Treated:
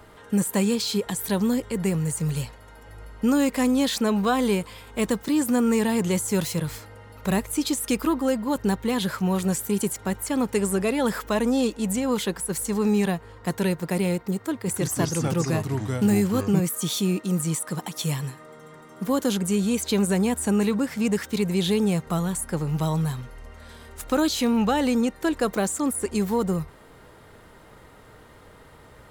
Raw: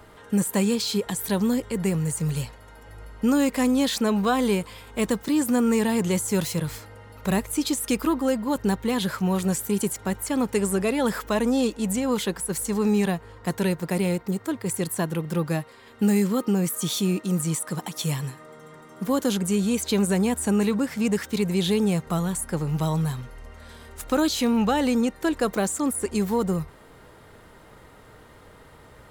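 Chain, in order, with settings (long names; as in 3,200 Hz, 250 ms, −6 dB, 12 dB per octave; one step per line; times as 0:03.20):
0:14.54–0:16.60: delay with pitch and tempo change per echo 134 ms, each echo −4 semitones, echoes 2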